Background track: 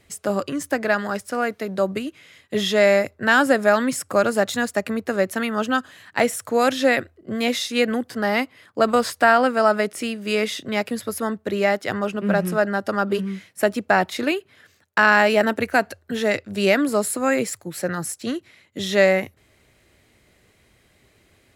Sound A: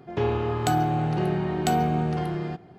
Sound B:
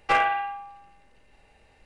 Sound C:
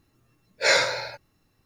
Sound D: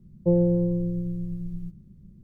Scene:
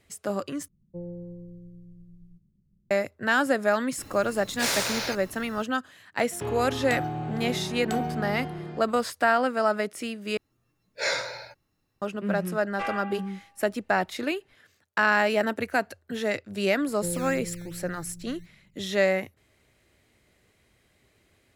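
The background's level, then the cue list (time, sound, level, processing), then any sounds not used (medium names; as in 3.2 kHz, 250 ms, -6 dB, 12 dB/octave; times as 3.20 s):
background track -6.5 dB
0.68 s: replace with D -17.5 dB
3.98 s: add C -7 dB + spectrum-flattening compressor 4:1
6.24 s: add A -7.5 dB
10.37 s: replace with C -7.5 dB
12.70 s: add B -11 dB
16.76 s: add D -12.5 dB + decimation with a swept rate 13×, swing 160% 2.6 Hz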